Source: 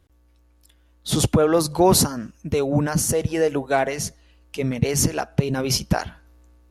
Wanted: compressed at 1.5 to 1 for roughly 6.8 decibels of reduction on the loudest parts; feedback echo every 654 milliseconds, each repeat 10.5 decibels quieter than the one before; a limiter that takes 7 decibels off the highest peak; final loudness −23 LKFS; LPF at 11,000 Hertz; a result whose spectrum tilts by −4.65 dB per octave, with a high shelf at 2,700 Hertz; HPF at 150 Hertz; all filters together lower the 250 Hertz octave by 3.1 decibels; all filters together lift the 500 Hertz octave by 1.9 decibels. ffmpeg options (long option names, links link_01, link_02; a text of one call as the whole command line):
ffmpeg -i in.wav -af "highpass=150,lowpass=11000,equalizer=frequency=250:width_type=o:gain=-5,equalizer=frequency=500:width_type=o:gain=4,highshelf=frequency=2700:gain=-7,acompressor=threshold=-31dB:ratio=1.5,alimiter=limit=-19dB:level=0:latency=1,aecho=1:1:654|1308|1962:0.299|0.0896|0.0269,volume=7dB" out.wav